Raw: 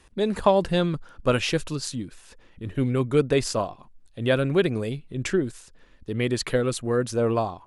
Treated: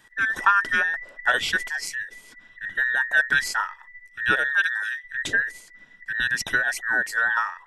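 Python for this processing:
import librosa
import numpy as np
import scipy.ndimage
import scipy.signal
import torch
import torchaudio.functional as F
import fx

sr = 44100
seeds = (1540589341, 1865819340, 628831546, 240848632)

y = fx.band_invert(x, sr, width_hz=2000)
y = fx.highpass(y, sr, hz=fx.line((4.49, 1400.0), (5.04, 510.0)), slope=12, at=(4.49, 5.04), fade=0.02)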